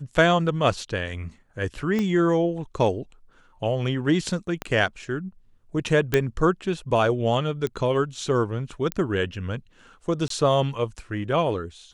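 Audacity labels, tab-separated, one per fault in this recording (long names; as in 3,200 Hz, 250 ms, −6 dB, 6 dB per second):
1.990000	1.990000	click −14 dBFS
4.620000	4.620000	click −14 dBFS
6.140000	6.140000	click −6 dBFS
7.670000	7.670000	click −16 dBFS
8.920000	8.920000	click −12 dBFS
10.280000	10.300000	drop-out 23 ms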